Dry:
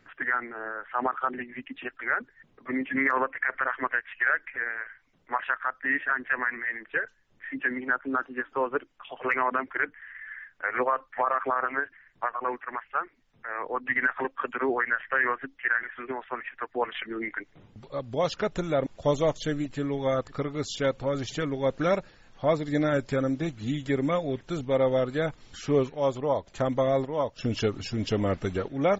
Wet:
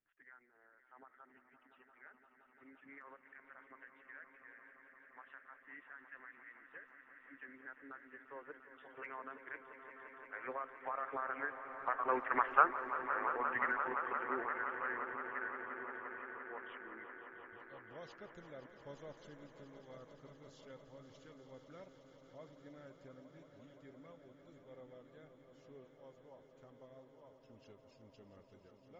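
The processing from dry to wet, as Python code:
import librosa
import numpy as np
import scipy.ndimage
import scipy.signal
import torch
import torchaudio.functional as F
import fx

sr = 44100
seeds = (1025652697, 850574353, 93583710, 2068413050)

y = fx.doppler_pass(x, sr, speed_mps=10, closest_m=1.9, pass_at_s=12.5)
y = fx.echo_swell(y, sr, ms=173, loudest=5, wet_db=-13)
y = y * librosa.db_to_amplitude(3.0)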